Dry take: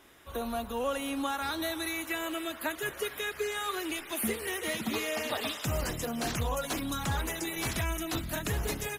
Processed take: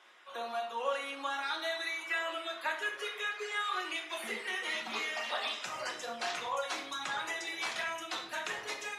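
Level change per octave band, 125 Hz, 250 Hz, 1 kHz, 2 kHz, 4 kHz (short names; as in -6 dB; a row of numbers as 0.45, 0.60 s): under -25 dB, -15.5 dB, -0.5 dB, +1.0 dB, -0.5 dB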